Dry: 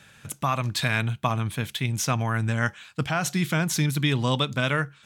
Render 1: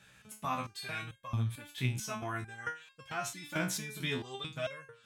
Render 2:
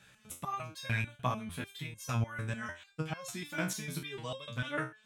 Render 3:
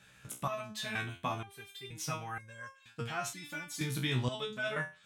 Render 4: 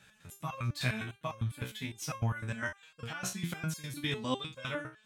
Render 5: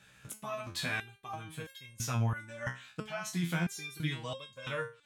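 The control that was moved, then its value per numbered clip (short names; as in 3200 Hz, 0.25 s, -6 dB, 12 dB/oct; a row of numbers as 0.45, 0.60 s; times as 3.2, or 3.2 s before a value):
stepped resonator, rate: 4.5, 6.7, 2.1, 9.9, 3 Hz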